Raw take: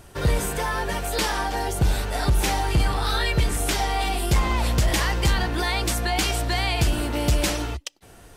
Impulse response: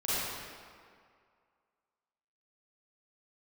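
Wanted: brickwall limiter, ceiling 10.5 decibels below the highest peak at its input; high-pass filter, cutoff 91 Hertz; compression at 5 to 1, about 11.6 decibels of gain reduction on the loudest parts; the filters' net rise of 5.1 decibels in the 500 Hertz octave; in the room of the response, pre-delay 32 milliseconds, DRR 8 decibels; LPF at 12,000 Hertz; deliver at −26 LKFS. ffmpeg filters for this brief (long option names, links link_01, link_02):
-filter_complex "[0:a]highpass=91,lowpass=12000,equalizer=frequency=500:width_type=o:gain=6.5,acompressor=threshold=-30dB:ratio=5,alimiter=level_in=3dB:limit=-24dB:level=0:latency=1,volume=-3dB,asplit=2[link_01][link_02];[1:a]atrim=start_sample=2205,adelay=32[link_03];[link_02][link_03]afir=irnorm=-1:irlink=0,volume=-17dB[link_04];[link_01][link_04]amix=inputs=2:normalize=0,volume=9dB"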